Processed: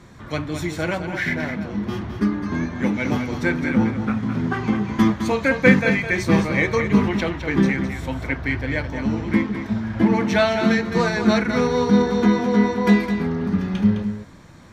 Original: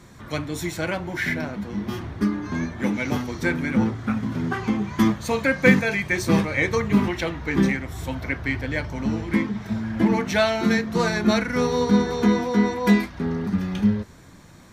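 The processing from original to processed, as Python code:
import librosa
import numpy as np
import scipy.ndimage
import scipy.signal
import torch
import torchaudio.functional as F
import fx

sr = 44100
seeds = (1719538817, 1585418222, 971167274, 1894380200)

y = fx.high_shelf(x, sr, hz=7500.0, db=-11.5)
y = y + 10.0 ** (-8.5 / 20.0) * np.pad(y, (int(210 * sr / 1000.0), 0))[:len(y)]
y = y * librosa.db_to_amplitude(2.0)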